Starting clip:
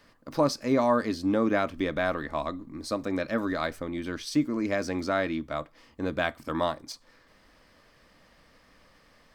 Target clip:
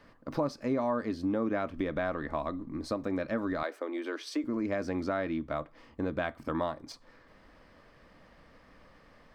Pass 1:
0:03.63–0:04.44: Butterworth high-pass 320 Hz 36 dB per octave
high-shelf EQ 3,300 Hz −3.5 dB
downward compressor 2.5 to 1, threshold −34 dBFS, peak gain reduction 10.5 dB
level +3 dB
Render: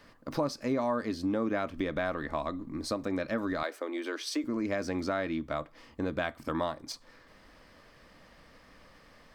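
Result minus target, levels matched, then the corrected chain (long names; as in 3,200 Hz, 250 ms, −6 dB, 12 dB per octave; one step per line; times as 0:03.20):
8,000 Hz band +7.5 dB
0:03.63–0:04.44: Butterworth high-pass 320 Hz 36 dB per octave
high-shelf EQ 3,300 Hz −13.5 dB
downward compressor 2.5 to 1, threshold −34 dBFS, peak gain reduction 10 dB
level +3 dB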